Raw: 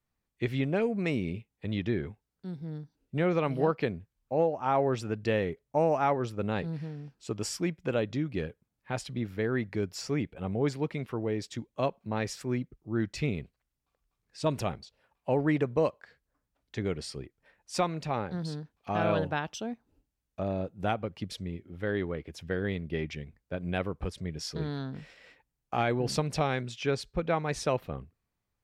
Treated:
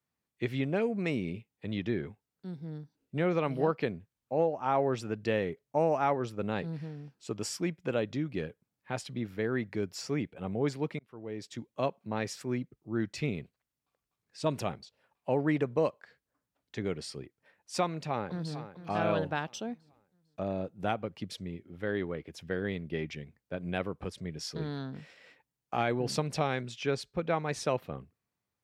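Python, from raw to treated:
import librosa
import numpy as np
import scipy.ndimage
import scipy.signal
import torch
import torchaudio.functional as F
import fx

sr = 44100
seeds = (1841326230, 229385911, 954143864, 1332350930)

y = fx.echo_throw(x, sr, start_s=17.85, length_s=0.71, ms=450, feedback_pct=40, wet_db=-12.0)
y = fx.edit(y, sr, fx.fade_in_span(start_s=10.99, length_s=0.68), tone=tone)
y = scipy.signal.sosfilt(scipy.signal.butter(2, 110.0, 'highpass', fs=sr, output='sos'), y)
y = F.gain(torch.from_numpy(y), -1.5).numpy()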